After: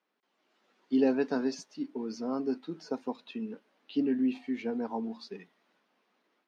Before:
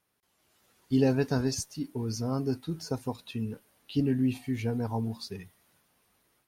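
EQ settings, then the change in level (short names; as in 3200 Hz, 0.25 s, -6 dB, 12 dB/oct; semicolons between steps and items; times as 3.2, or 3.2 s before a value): steep high-pass 210 Hz 36 dB/oct; air absorption 180 m; 0.0 dB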